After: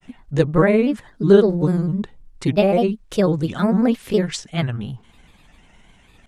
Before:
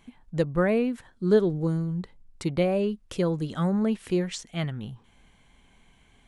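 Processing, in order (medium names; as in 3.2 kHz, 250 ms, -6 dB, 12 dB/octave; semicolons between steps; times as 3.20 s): granulator, spray 19 ms, pitch spread up and down by 3 st; trim +9 dB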